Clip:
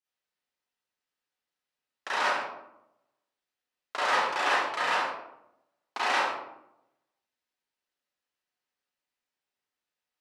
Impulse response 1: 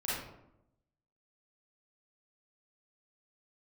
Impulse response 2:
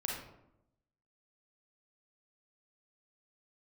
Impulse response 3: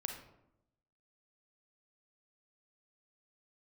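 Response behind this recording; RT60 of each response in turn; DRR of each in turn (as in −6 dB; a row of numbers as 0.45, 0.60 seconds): 1; 0.85, 0.85, 0.85 seconds; −9.5, −2.5, 3.0 decibels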